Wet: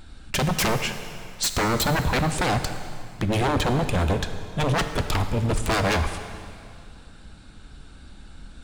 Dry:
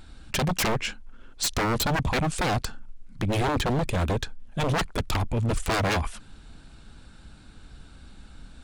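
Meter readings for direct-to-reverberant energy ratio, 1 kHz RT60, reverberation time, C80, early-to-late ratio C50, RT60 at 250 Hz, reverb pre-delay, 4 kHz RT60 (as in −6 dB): 7.5 dB, 2.3 s, 2.3 s, 9.5 dB, 9.0 dB, 2.3 s, 5 ms, 2.2 s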